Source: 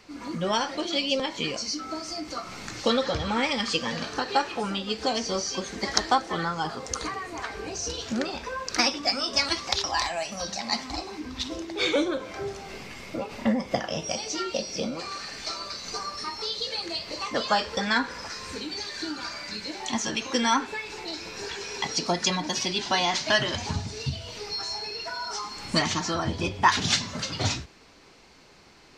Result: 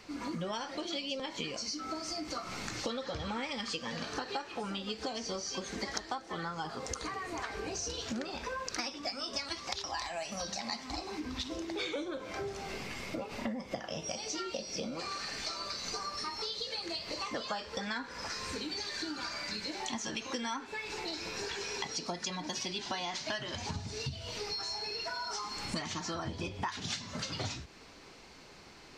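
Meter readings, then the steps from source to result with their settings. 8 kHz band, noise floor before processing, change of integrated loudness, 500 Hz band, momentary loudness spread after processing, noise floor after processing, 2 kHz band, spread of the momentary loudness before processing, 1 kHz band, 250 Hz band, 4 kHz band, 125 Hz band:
-8.0 dB, -43 dBFS, -9.5 dB, -9.5 dB, 4 LU, -52 dBFS, -10.0 dB, 11 LU, -10.5 dB, -9.0 dB, -9.0 dB, -9.0 dB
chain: compressor 6:1, threshold -35 dBFS, peak gain reduction 19.5 dB

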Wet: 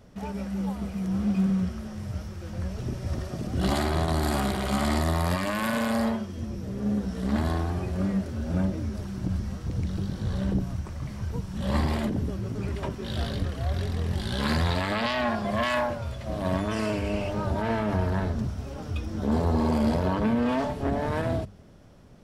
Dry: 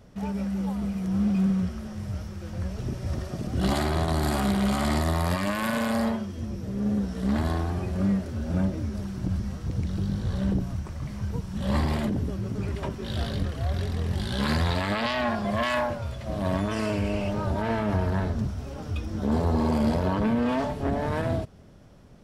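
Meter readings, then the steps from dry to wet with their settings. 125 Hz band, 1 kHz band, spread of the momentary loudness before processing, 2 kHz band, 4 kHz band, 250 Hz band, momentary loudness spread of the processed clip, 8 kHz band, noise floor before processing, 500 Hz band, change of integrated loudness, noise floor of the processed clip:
-1.0 dB, 0.0 dB, 8 LU, 0.0 dB, 0.0 dB, -1.0 dB, 9 LU, 0.0 dB, -38 dBFS, 0.0 dB, -0.5 dB, -39 dBFS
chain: notches 50/100/150/200 Hz

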